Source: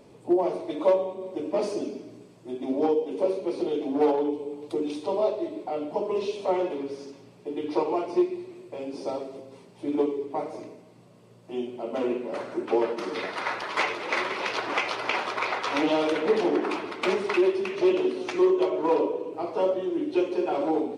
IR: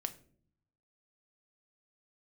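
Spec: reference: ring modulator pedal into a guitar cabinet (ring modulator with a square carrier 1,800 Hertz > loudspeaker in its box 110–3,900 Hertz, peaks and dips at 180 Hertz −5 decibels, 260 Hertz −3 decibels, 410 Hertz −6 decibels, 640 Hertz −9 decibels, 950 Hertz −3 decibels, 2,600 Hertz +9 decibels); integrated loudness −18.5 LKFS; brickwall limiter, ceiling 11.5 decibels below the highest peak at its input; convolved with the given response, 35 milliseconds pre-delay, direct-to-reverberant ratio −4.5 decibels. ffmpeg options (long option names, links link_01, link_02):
-filter_complex "[0:a]alimiter=limit=-22dB:level=0:latency=1,asplit=2[link_01][link_02];[1:a]atrim=start_sample=2205,adelay=35[link_03];[link_02][link_03]afir=irnorm=-1:irlink=0,volume=5dB[link_04];[link_01][link_04]amix=inputs=2:normalize=0,aeval=exprs='val(0)*sgn(sin(2*PI*1800*n/s))':channel_layout=same,highpass=110,equalizer=frequency=180:width_type=q:width=4:gain=-5,equalizer=frequency=260:width_type=q:width=4:gain=-3,equalizer=frequency=410:width_type=q:width=4:gain=-6,equalizer=frequency=640:width_type=q:width=4:gain=-9,equalizer=frequency=950:width_type=q:width=4:gain=-3,equalizer=frequency=2600:width_type=q:width=4:gain=9,lowpass=frequency=3900:width=0.5412,lowpass=frequency=3900:width=1.3066,volume=3dB"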